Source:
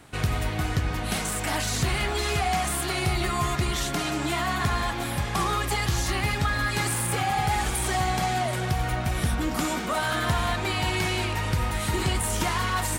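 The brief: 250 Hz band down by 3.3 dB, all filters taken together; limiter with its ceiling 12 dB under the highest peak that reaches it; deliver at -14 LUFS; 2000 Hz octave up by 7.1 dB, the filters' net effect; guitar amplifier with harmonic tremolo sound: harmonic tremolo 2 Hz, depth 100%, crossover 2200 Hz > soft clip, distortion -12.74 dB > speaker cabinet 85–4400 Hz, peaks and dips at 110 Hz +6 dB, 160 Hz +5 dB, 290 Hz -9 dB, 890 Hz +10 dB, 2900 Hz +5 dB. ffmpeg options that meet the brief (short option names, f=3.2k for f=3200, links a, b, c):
-filter_complex "[0:a]equalizer=f=250:t=o:g=-5,equalizer=f=2k:t=o:g=7.5,alimiter=limit=-24dB:level=0:latency=1,acrossover=split=2200[a][b];[a]aeval=exprs='val(0)*(1-1/2+1/2*cos(2*PI*2*n/s))':c=same[c];[b]aeval=exprs='val(0)*(1-1/2-1/2*cos(2*PI*2*n/s))':c=same[d];[c][d]amix=inputs=2:normalize=0,asoftclip=threshold=-34dB,highpass=85,equalizer=f=110:t=q:w=4:g=6,equalizer=f=160:t=q:w=4:g=5,equalizer=f=290:t=q:w=4:g=-9,equalizer=f=890:t=q:w=4:g=10,equalizer=f=2.9k:t=q:w=4:g=5,lowpass=f=4.4k:w=0.5412,lowpass=f=4.4k:w=1.3066,volume=23.5dB"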